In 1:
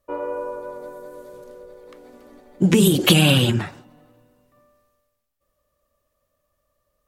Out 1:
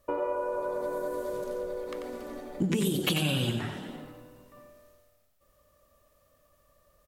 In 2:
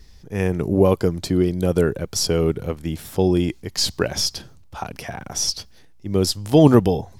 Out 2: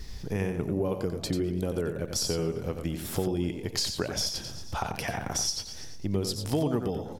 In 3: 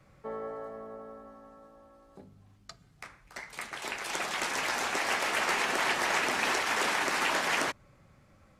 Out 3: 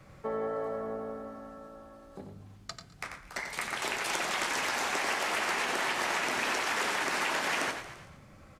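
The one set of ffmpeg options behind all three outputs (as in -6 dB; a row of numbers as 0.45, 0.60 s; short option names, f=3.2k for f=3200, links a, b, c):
-filter_complex "[0:a]asplit=2[a][b];[b]asplit=4[c][d][e][f];[c]adelay=114,afreqshift=37,volume=-17.5dB[g];[d]adelay=228,afreqshift=74,volume=-24.2dB[h];[e]adelay=342,afreqshift=111,volume=-31dB[i];[f]adelay=456,afreqshift=148,volume=-37.7dB[j];[g][h][i][j]amix=inputs=4:normalize=0[k];[a][k]amix=inputs=2:normalize=0,acompressor=threshold=-36dB:ratio=4,asplit=2[l][m];[m]aecho=0:1:91:0.447[n];[l][n]amix=inputs=2:normalize=0,volume=6dB"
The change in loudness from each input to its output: -13.5, -10.5, -1.5 LU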